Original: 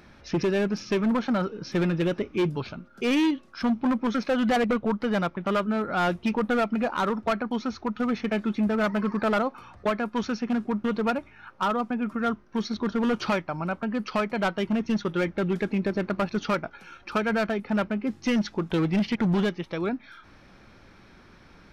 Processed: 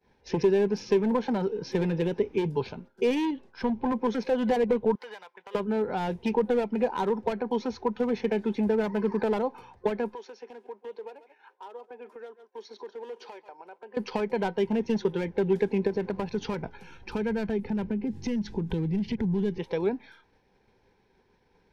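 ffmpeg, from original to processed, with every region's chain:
ffmpeg -i in.wav -filter_complex "[0:a]asettb=1/sr,asplit=3[link_01][link_02][link_03];[link_01]atrim=end=3.254[link_04];[link_02]atrim=start=3.25:end=3.92,asetpts=PTS-STARTPTS,afade=type=in:duration=0.004:curve=qsin,afade=type=out:start_time=0.666:duration=0.004:curve=qsin,asubboost=boost=9.5:cutoff=130,lowpass=frequency=3300:poles=1[link_05];[link_03]atrim=start=3.916[link_06];[link_04][link_05]acrossfade=duration=0.004:curve1=hsin:curve2=qsin[link_07];[link_07][link_06]acrossfade=duration=0.004:curve1=qsin:curve2=hsin,asettb=1/sr,asplit=3[link_08][link_09][link_10];[link_08]atrim=end=4.954[link_11];[link_09]atrim=start=4.95:end=5.55,asetpts=PTS-STARTPTS,afade=type=in:duration=0.004:curve=qsin,afade=type=out:start_time=0.596:duration=0.004:curve=qsin,highpass=1100,acompressor=threshold=-38dB:ratio=16:attack=3.2:release=140:knee=1:detection=peak[link_12];[link_10]atrim=start=5.546[link_13];[link_11][link_12]acrossfade=duration=0.004:curve1=hsin:curve2=qsin[link_14];[link_14][link_13]acrossfade=duration=0.004:curve1=qsin:curve2=hsin,asettb=1/sr,asplit=3[link_15][link_16][link_17];[link_15]atrim=end=10.144[link_18];[link_16]atrim=start=10.14:end=13.97,asetpts=PTS-STARTPTS,afade=type=in:duration=0.004:curve=qsin,afade=type=out:start_time=3.826:duration=0.004:curve=qsin,highpass=frequency=360:width=0.5412,highpass=frequency=360:width=1.3066,aecho=1:1:136:0.106,atrim=end_sample=168903,acompressor=threshold=-42dB:ratio=6:attack=3.2:release=140:knee=1:detection=peak[link_19];[link_17]atrim=start=13.966[link_20];[link_18][link_19]acrossfade=duration=0.004:curve1=hsin:curve2=qsin[link_21];[link_21][link_20]acrossfade=duration=0.004:curve1=qsin:curve2=hsin,asettb=1/sr,asplit=3[link_22][link_23][link_24];[link_22]atrim=end=15.874[link_25];[link_23]atrim=start=15.87:end=19.58,asetpts=PTS-STARTPTS,afade=type=in:duration=0.004:curve=qsin,afade=type=out:start_time=3.706:duration=0.004:curve=qsin,asubboost=boost=9:cutoff=240,acompressor=threshold=-26dB:ratio=4:attack=3.2:release=140:knee=1:detection=peak[link_26];[link_24]atrim=start=19.576[link_27];[link_25][link_26]acrossfade=duration=0.004:curve1=hsin:curve2=qsin[link_28];[link_28][link_27]acrossfade=duration=0.004:curve1=qsin:curve2=hsin,acrossover=split=250[link_29][link_30];[link_30]acompressor=threshold=-29dB:ratio=3[link_31];[link_29][link_31]amix=inputs=2:normalize=0,agate=range=-33dB:threshold=-42dB:ratio=3:detection=peak,superequalizer=7b=3.16:9b=2.24:10b=0.398,volume=-2dB" out.wav

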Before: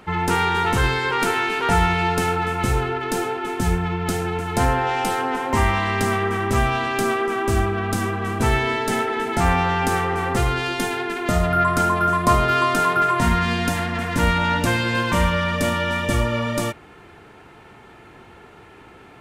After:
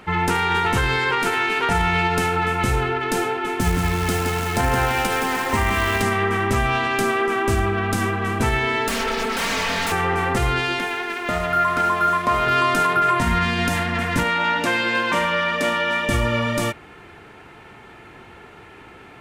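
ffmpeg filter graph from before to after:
ffmpeg -i in.wav -filter_complex "[0:a]asettb=1/sr,asplit=3[link_01][link_02][link_03];[link_01]atrim=end=3.604[link_04];[link_02]atrim=start=3.6:end=6.02,asetpts=PTS-STARTPTS,afade=type=in:duration=0.004:curve=qsin,afade=type=out:start_time=2.416:duration=0.004:curve=qsin,aecho=1:1:170|340|510|680|850:0.473|0.185|0.072|0.0281|0.0109,atrim=end_sample=106722,acrusher=bits=6:dc=4:mix=0:aa=0.000001[link_05];[link_03]atrim=start=6.016[link_06];[link_04][link_05]acrossfade=duration=0.004:curve1=hsin:curve2=qsin[link_07];[link_07][link_06]acrossfade=duration=0.004:curve1=qsin:curve2=hsin,asettb=1/sr,asplit=3[link_08][link_09][link_10];[link_08]atrim=end=8.884[link_11];[link_09]atrim=start=8.88:end=9.92,asetpts=PTS-STARTPTS,afade=type=in:duration=0.004:curve=qsin,afade=type=out:start_time=1.036:duration=0.004:curve=qsin,aeval=exprs='0.075*(abs(mod(val(0)/0.075+3,4)-2)-1)':channel_layout=same,aecho=1:1:4.4:0.74,atrim=end_sample=45864[link_12];[link_10]atrim=start=9.916[link_13];[link_11][link_12]acrossfade=duration=0.004:curve1=hsin:curve2=qsin[link_14];[link_14][link_13]acrossfade=duration=0.004:curve1=qsin:curve2=hsin,asettb=1/sr,asplit=3[link_15][link_16][link_17];[link_15]atrim=end=10.794[link_18];[link_16]atrim=start=10.79:end=12.47,asetpts=PTS-STARTPTS,afade=type=in:duration=0.004:curve=qsin,afade=type=out:start_time=1.676:duration=0.004:curve=qsin,acrossover=split=3700[link_19][link_20];[link_20]acompressor=threshold=-43dB:ratio=4:attack=1:release=60[link_21];[link_19][link_21]amix=inputs=2:normalize=0,lowshelf=frequency=270:gain=-11.5,aeval=exprs='sgn(val(0))*max(abs(val(0))-0.00891,0)':channel_layout=same[link_22];[link_17]atrim=start=12.466[link_23];[link_18][link_22]acrossfade=duration=0.004:curve1=hsin:curve2=qsin[link_24];[link_24][link_23]acrossfade=duration=0.004:curve1=qsin:curve2=hsin,asettb=1/sr,asplit=3[link_25][link_26][link_27];[link_25]atrim=end=14.234[link_28];[link_26]atrim=start=14.23:end=16.09,asetpts=PTS-STARTPTS,afade=type=in:duration=0.004:curve=qsin,afade=type=out:start_time=1.856:duration=0.004:curve=qsin,highpass=280,highshelf=frequency=7200:gain=-8.5[link_29];[link_27]atrim=start=16.086[link_30];[link_28][link_29]acrossfade=duration=0.004:curve1=hsin:curve2=qsin[link_31];[link_31][link_30]acrossfade=duration=0.004:curve1=qsin:curve2=hsin,equalizer=frequency=2200:width=1.1:gain=3.5,alimiter=level_in=10dB:limit=-1dB:release=50:level=0:latency=1,volume=-9dB" out.wav

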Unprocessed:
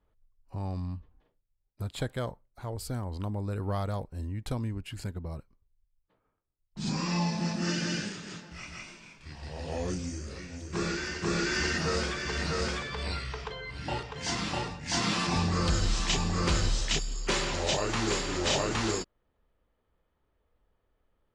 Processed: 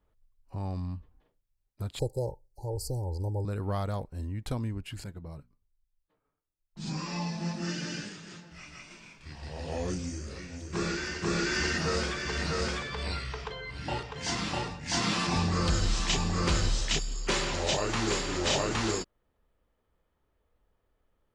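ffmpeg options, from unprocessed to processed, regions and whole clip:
ffmpeg -i in.wav -filter_complex "[0:a]asettb=1/sr,asplit=3[link_01][link_02][link_03];[link_01]atrim=end=1.994[link_04];[link_02]atrim=start=1.99:end=3.45,asetpts=PTS-STARTPTS,afade=type=in:duration=0.004:curve=qsin,afade=type=out:start_time=1.456:duration=0.004:curve=qsin,asuperstop=centerf=2000:order=20:qfactor=0.56,aecho=1:1:2.2:0.84,atrim=end_sample=64386[link_05];[link_03]atrim=start=3.446[link_06];[link_04][link_05]acrossfade=duration=0.004:curve1=hsin:curve2=qsin[link_07];[link_07][link_06]acrossfade=duration=0.004:curve1=qsin:curve2=hsin,asettb=1/sr,asplit=3[link_08][link_09][link_10];[link_08]atrim=end=5.044[link_11];[link_09]atrim=start=5.04:end=8.91,asetpts=PTS-STARTPTS,afade=type=in:duration=0.004:curve=qsin,afade=type=out:start_time=3.866:duration=0.004:curve=qsin,flanger=delay=5.6:depth=1.5:regen=66:speed=1.2:shape=triangular,bandreject=frequency=60:width_type=h:width=6,bandreject=frequency=120:width_type=h:width=6,bandreject=frequency=180:width_type=h:width=6,bandreject=frequency=240:width_type=h:width=6[link_12];[link_10]atrim=start=8.906[link_13];[link_11][link_12]acrossfade=duration=0.004:curve1=hsin:curve2=qsin[link_14];[link_14][link_13]acrossfade=duration=0.004:curve1=qsin:curve2=hsin" out.wav

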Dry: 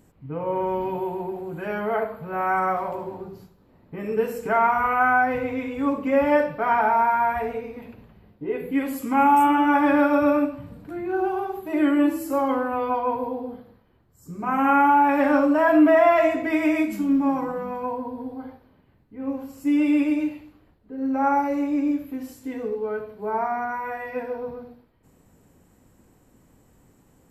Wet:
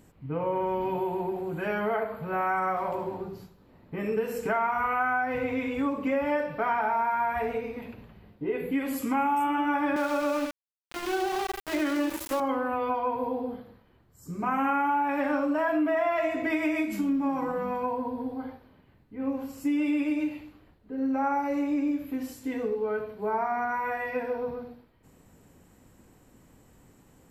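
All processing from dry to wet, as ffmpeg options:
ffmpeg -i in.wav -filter_complex "[0:a]asettb=1/sr,asplit=3[link_01][link_02][link_03];[link_01]atrim=end=9.964[link_04];[link_02]atrim=start=9.96:end=12.4,asetpts=PTS-STARTPTS,afade=type=in:duration=0.004:curve=qsin,afade=type=out:start_time=2.436:duration=0.004:curve=qsin,highpass=320,aeval=exprs='val(0)*gte(abs(val(0)),0.0316)':channel_layout=same[link_05];[link_03]atrim=start=12.396[link_06];[link_04][link_05]acrossfade=duration=0.004:curve1=hsin:curve2=qsin[link_07];[link_07][link_06]acrossfade=duration=0.004:curve1=qsin:curve2=hsin,equalizer=frequency=3000:width_type=o:width=2.2:gain=3,acompressor=threshold=-25dB:ratio=4" out.wav

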